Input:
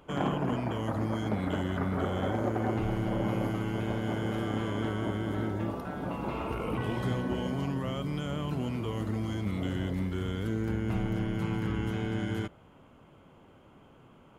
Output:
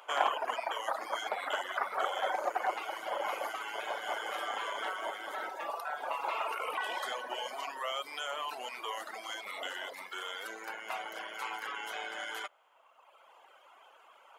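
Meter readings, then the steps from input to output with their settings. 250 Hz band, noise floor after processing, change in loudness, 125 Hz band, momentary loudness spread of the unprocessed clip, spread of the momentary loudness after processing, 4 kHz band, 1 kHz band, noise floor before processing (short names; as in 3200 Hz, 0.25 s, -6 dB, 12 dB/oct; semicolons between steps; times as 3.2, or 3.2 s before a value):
-26.0 dB, -61 dBFS, -4.5 dB, under -40 dB, 3 LU, 7 LU, +5.0 dB, +4.0 dB, -57 dBFS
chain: HPF 670 Hz 24 dB/oct; reverb removal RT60 1.6 s; gain +7.5 dB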